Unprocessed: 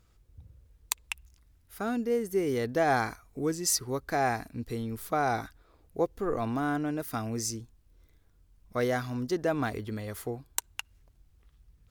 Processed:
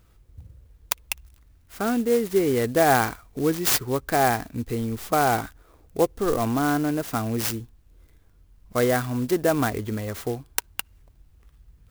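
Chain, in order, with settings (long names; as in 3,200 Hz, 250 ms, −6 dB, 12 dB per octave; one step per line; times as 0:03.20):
converter with an unsteady clock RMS 0.046 ms
level +7 dB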